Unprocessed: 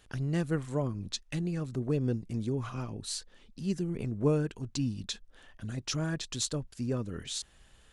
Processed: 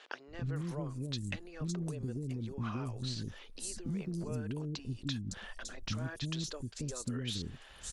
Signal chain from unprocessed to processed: peak limiter -25.5 dBFS, peak gain reduction 9.5 dB; compression 6:1, threshold -45 dBFS, peak gain reduction 14.5 dB; three bands offset in time mids, lows, highs 280/560 ms, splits 400/5500 Hz; trim +10 dB

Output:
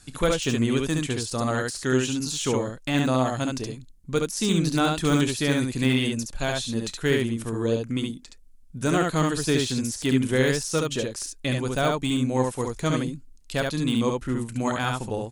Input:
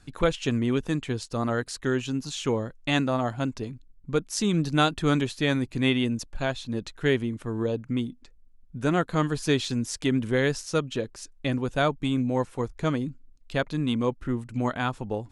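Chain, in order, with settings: de-esser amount 95%; peaking EQ 9.9 kHz +15 dB 2.1 oct; early reflections 31 ms -16 dB, 70 ms -3 dB

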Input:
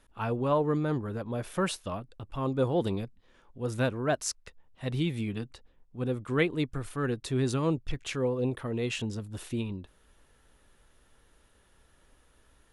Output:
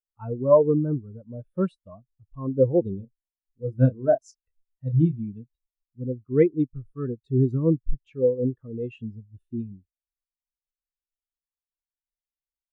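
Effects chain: 2.96–5.19 s: doubling 31 ms -7 dB; spectral contrast expander 2.5:1; trim +7.5 dB

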